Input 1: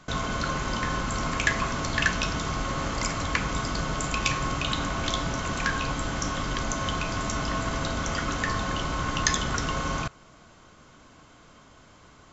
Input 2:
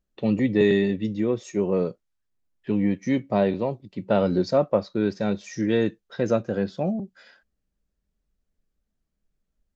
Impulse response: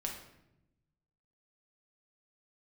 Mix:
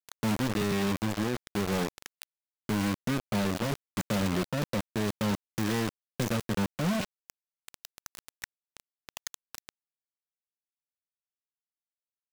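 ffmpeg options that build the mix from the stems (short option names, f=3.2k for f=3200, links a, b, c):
-filter_complex "[0:a]highpass=f=1k:w=0.5412,highpass=f=1k:w=1.3066,acrusher=bits=9:mix=0:aa=0.000001,volume=0dB[a];[1:a]bass=f=250:g=10,treble=f=4k:g=6,volume=-6.5dB,asplit=2[b][c];[c]apad=whole_len=543412[d];[a][d]sidechaincompress=threshold=-43dB:ratio=4:attack=37:release=556[e];[e][b]amix=inputs=2:normalize=0,acrossover=split=200|430|1700[f][g][h][i];[f]acompressor=threshold=-32dB:ratio=4[j];[g]acompressor=threshold=-35dB:ratio=4[k];[h]acompressor=threshold=-44dB:ratio=4[l];[i]acompressor=threshold=-43dB:ratio=4[m];[j][k][l][m]amix=inputs=4:normalize=0,acrusher=bits=4:mix=0:aa=0.000001,adynamicequalizer=threshold=0.00355:dfrequency=5400:dqfactor=0.7:tfrequency=5400:tqfactor=0.7:attack=5:release=100:ratio=0.375:range=2.5:mode=cutabove:tftype=highshelf"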